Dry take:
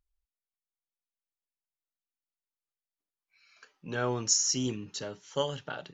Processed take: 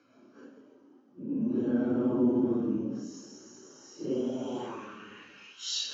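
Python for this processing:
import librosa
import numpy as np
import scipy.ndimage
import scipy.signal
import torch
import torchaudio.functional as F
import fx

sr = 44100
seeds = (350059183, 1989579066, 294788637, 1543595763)

y = fx.bin_compress(x, sr, power=0.6)
y = fx.paulstretch(y, sr, seeds[0], factor=4.0, window_s=0.05, from_s=3.53)
y = fx.peak_eq(y, sr, hz=240.0, db=5.0, octaves=0.88)
y = fx.filter_sweep_bandpass(y, sr, from_hz=280.0, to_hz=3600.0, start_s=3.78, end_s=5.72, q=2.9)
y = y * librosa.db_to_amplitude(6.0)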